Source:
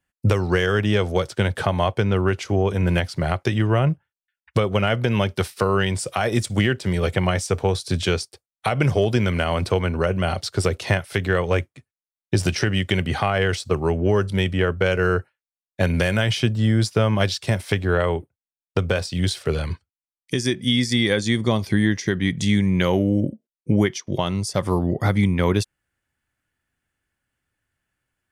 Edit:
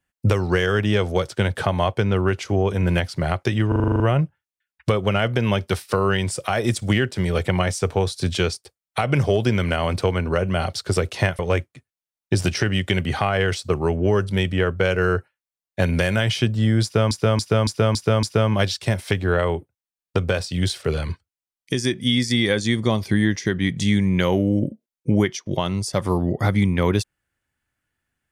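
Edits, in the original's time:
3.68 stutter 0.04 s, 9 plays
11.07–11.4 cut
16.84–17.12 loop, 6 plays

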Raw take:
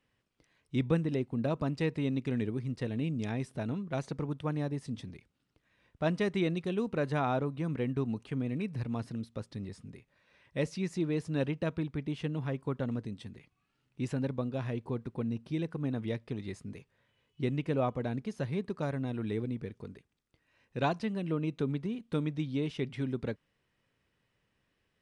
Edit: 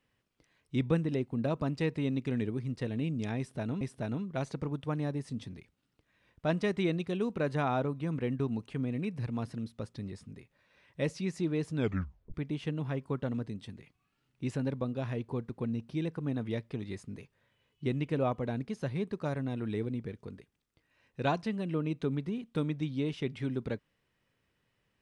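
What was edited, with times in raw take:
3.38–3.81 loop, 2 plays
11.33 tape stop 0.58 s

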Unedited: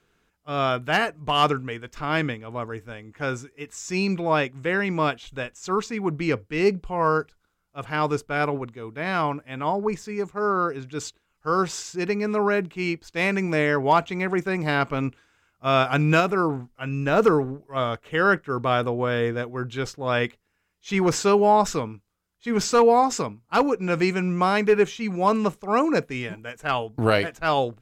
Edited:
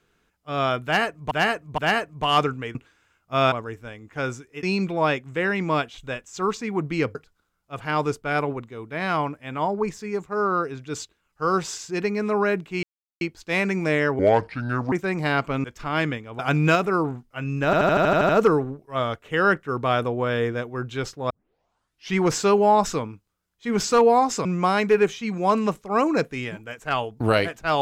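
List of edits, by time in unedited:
0.84–1.31 loop, 3 plays
1.81–2.56 swap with 15.07–15.84
3.67–3.92 cut
6.44–7.2 cut
12.88 insert silence 0.38 s
13.86–14.35 speed 67%
17.1 stutter 0.08 s, 9 plays
20.11 tape start 0.87 s
23.26–24.23 cut

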